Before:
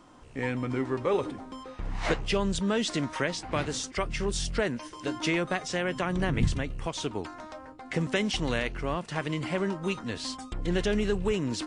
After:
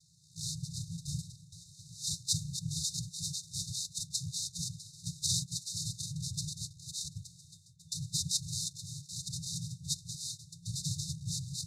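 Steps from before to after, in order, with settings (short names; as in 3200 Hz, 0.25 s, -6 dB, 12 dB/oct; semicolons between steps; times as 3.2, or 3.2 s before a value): fifteen-band EQ 630 Hz +10 dB, 2500 Hz +10 dB, 6300 Hz +3 dB; noise vocoder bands 3; FFT band-reject 180–3600 Hz; gain -5 dB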